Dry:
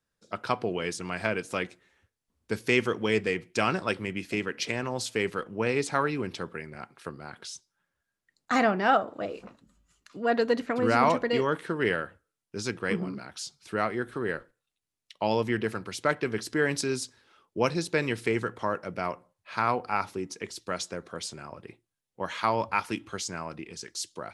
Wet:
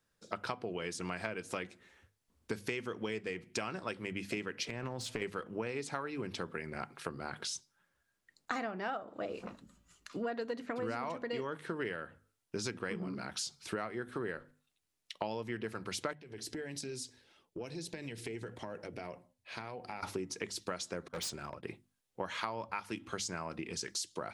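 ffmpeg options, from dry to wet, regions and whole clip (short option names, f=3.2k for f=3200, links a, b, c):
-filter_complex "[0:a]asettb=1/sr,asplit=3[a][b][c];[a]atrim=end=4.684[d];[b]atrim=start=4.68:end=5.22,asetpts=PTS-STARTPTS,afade=t=in:d=0.004:c=qsin,afade=t=out:st=0.536:d=0.004:c=qsin,acompressor=threshold=-31dB:ratio=5:attack=3.2:release=140:knee=1:detection=peak,bass=f=250:g=5,treble=f=4k:g=-6,aeval=exprs='clip(val(0),-1,0.0168)':c=same[e];[c]atrim=start=5.216[f];[d][e]acrossfade=d=0.004:c1=hsin:c2=qsin[g];[g][f]acrossfade=d=0.004:c1=qsin:c2=hsin,asettb=1/sr,asplit=3[h][i][j];[h]atrim=end=16.134[k];[i]atrim=start=16.13:end=20.03,asetpts=PTS-STARTPTS,afade=t=in:d=0.004:c=qsin,afade=t=out:st=3.896:d=0.004:c=qsin,equalizer=f=1.2k:t=o:w=0.77:g=-11.5,acompressor=threshold=-36dB:ratio=12:attack=3.2:release=140:knee=1:detection=peak,flanger=delay=1:depth=1.8:regen=-63:speed=1.6:shape=sinusoidal[l];[j]atrim=start=20.026[m];[k][l]acrossfade=d=0.004:c1=hsin:c2=qsin[n];[n][m]acrossfade=d=0.004:c1=qsin:c2=hsin,asettb=1/sr,asplit=3[o][p][q];[o]atrim=end=21.084[r];[p]atrim=start=21.08:end=21.63,asetpts=PTS-STARTPTS,afade=t=in:d=0.004:c=qsin,afade=t=out:st=0.546:d=0.004:c=qsin,agate=range=-33dB:threshold=-39dB:ratio=3:release=100:detection=peak,asoftclip=type=hard:threshold=-38.5dB[s];[q]atrim=start=21.626[t];[r][s]acrossfade=d=0.004:c1=hsin:c2=qsin[u];[u][t]acrossfade=d=0.004:c1=qsin:c2=hsin,bandreject=f=50:t=h:w=6,bandreject=f=100:t=h:w=6,bandreject=f=150:t=h:w=6,bandreject=f=200:t=h:w=6,bandreject=f=250:t=h:w=6,acompressor=threshold=-38dB:ratio=10,volume=3.5dB"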